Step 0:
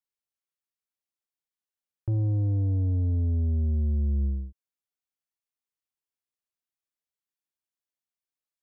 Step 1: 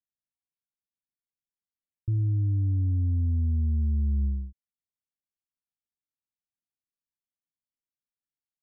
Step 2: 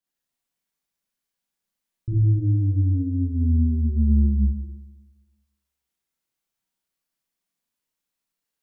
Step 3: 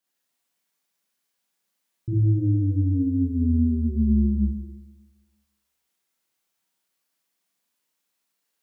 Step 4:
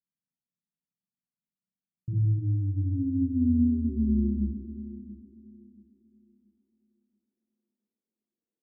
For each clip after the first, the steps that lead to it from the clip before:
inverse Chebyshev low-pass filter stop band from 580 Hz, stop band 40 dB
parametric band 88 Hz −12 dB 0.28 octaves; four-comb reverb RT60 1.2 s, combs from 33 ms, DRR −7.5 dB; level +3.5 dB
high-pass filter 250 Hz 6 dB per octave; level +6.5 dB
low-pass filter sweep 180 Hz → 380 Hz, 0:02.62–0:04.34; feedback echo with a high-pass in the loop 681 ms, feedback 34%, high-pass 160 Hz, level −12.5 dB; level −7.5 dB

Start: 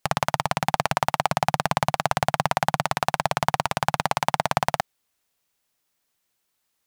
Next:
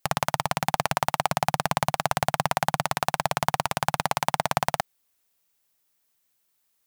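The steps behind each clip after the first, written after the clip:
high-shelf EQ 9,500 Hz +8.5 dB
level −2 dB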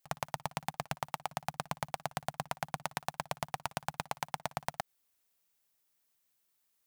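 output level in coarse steps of 17 dB
volume swells 159 ms
level +8 dB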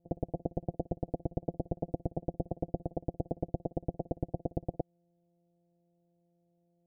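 samples sorted by size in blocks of 256 samples
Chebyshev low-pass filter 750 Hz, order 6
level +5 dB

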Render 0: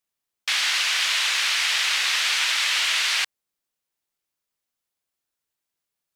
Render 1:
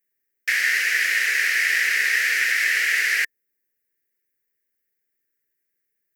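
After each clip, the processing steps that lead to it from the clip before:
drawn EQ curve 140 Hz 0 dB, 240 Hz +3 dB, 440 Hz +8 dB, 1,000 Hz −22 dB, 1,800 Hz +12 dB, 3,500 Hz −14 dB, 5,100 Hz −4 dB, 8,700 Hz −3 dB, 16,000 Hz +11 dB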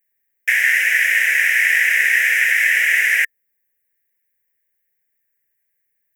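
phaser with its sweep stopped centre 1,200 Hz, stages 6
level +6 dB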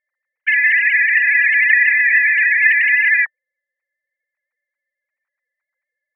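three sine waves on the formant tracks
level +2 dB

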